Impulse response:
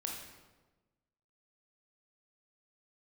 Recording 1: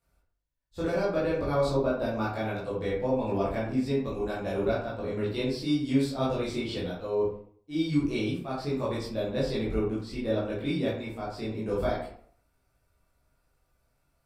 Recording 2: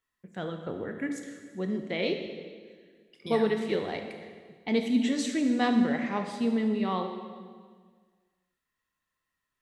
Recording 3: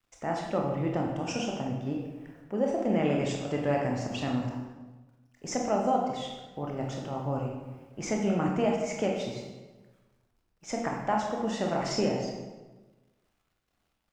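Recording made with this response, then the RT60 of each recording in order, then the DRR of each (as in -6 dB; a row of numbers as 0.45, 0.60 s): 3; 0.55, 1.7, 1.2 s; -8.5, 4.5, -0.5 dB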